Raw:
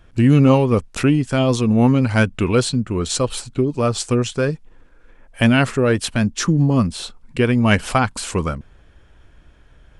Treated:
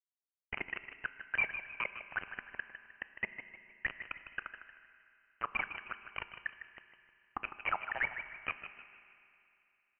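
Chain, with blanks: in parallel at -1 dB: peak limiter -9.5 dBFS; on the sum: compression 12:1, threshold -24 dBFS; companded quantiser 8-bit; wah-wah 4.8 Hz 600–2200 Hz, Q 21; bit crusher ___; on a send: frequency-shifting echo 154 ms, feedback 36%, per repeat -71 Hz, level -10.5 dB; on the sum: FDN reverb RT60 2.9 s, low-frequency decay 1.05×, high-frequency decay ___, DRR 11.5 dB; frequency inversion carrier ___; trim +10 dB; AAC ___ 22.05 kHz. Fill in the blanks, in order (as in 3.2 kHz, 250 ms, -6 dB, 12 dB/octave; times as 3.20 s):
7-bit, 0.9×, 3 kHz, 48 kbps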